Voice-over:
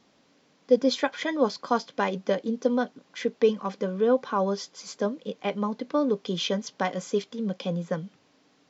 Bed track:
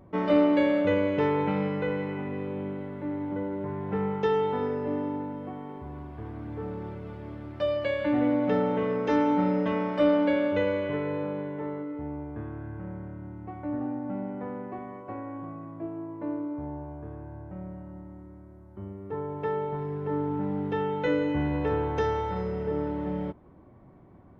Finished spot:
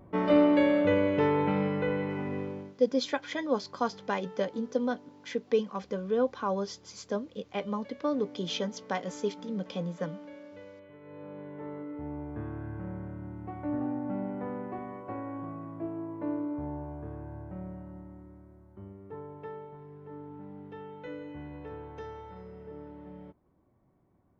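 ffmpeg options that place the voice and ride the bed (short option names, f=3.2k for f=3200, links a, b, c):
-filter_complex "[0:a]adelay=2100,volume=-5dB[a];[1:a]volume=21.5dB,afade=t=out:st=2.38:d=0.37:silence=0.0794328,afade=t=in:st=11:d=1.47:silence=0.0794328,afade=t=out:st=17.37:d=2.36:silence=0.177828[b];[a][b]amix=inputs=2:normalize=0"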